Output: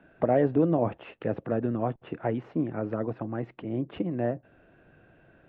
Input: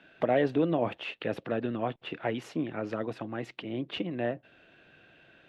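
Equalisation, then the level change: LPF 1300 Hz 12 dB/oct; low shelf 110 Hz +11 dB; +2.0 dB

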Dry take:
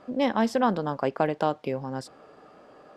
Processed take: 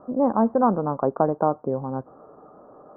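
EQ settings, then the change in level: steep low-pass 1300 Hz 48 dB/oct; +4.0 dB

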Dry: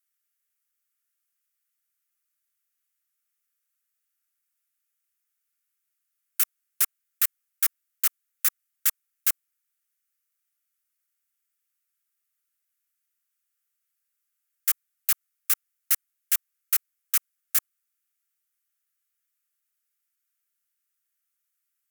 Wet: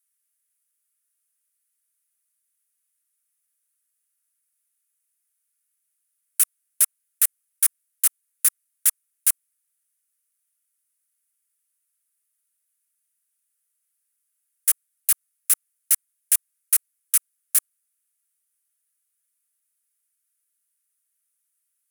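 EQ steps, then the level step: HPF 1100 Hz; bell 9900 Hz +14 dB 0.52 oct; -1.5 dB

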